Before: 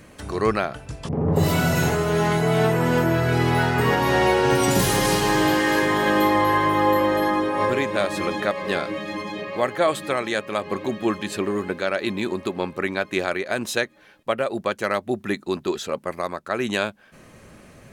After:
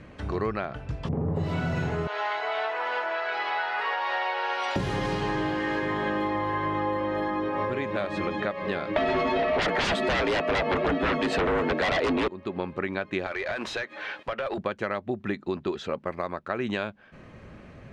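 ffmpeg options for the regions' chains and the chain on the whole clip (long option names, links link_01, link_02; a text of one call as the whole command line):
ffmpeg -i in.wav -filter_complex "[0:a]asettb=1/sr,asplit=3[link_01][link_02][link_03];[link_01]atrim=end=2.074[link_04];[link_02]atrim=start=2.07:end=4.76,asetpts=PTS-STARTPTS,afade=type=in:duration=0.004:curve=qsin,afade=type=out:start_time=2.686:duration=0.004:curve=qsin,highpass=frequency=650:width=0.5412,highpass=frequency=650:width=1.3066,highshelf=frequency=6000:width_type=q:width=1.5:gain=-8.5[link_05];[link_03]atrim=start=4.756[link_06];[link_04][link_05]acrossfade=duration=0.004:curve1=hsin:curve2=qsin[link_07];[link_07][link_06]acrossfade=duration=0.004:curve1=qsin:curve2=hsin,asettb=1/sr,asplit=3[link_08][link_09][link_10];[link_08]atrim=end=8.964[link_11];[link_09]atrim=start=8.96:end=12.28,asetpts=PTS-STARTPTS,afade=type=in:duration=0.004:curve=qsin,afade=type=out:start_time=3.316:duration=0.004:curve=qsin,equalizer=frequency=630:width_type=o:width=0.39:gain=8.5,afreqshift=63,aeval=exprs='0.631*sin(PI/2*8.91*val(0)/0.631)':channel_layout=same[link_12];[link_10]atrim=start=12.276[link_13];[link_11][link_12]acrossfade=duration=0.004:curve1=hsin:curve2=qsin[link_14];[link_14][link_13]acrossfade=duration=0.004:curve1=qsin:curve2=hsin,asettb=1/sr,asplit=3[link_15][link_16][link_17];[link_15]atrim=end=13.264[link_18];[link_16]atrim=start=13.26:end=14.58,asetpts=PTS-STARTPTS,afade=type=in:duration=0.004:curve=qsin,afade=type=out:start_time=1.316:duration=0.004:curve=qsin,lowshelf=frequency=230:gain=-10.5,acompressor=threshold=-39dB:ratio=8:attack=3.2:release=140:knee=1:detection=peak,asplit=2[link_19][link_20];[link_20]highpass=frequency=720:poles=1,volume=27dB,asoftclip=type=tanh:threshold=-17dB[link_21];[link_19][link_21]amix=inputs=2:normalize=0,lowpass=frequency=7600:poles=1,volume=-6dB[link_22];[link_17]atrim=start=14.576[link_23];[link_18][link_22]acrossfade=duration=0.004:curve1=hsin:curve2=qsin[link_24];[link_24][link_23]acrossfade=duration=0.004:curve1=qsin:curve2=hsin,lowpass=3200,equalizer=frequency=64:width=0.48:gain=4.5,acompressor=threshold=-24dB:ratio=6,volume=-1dB" out.wav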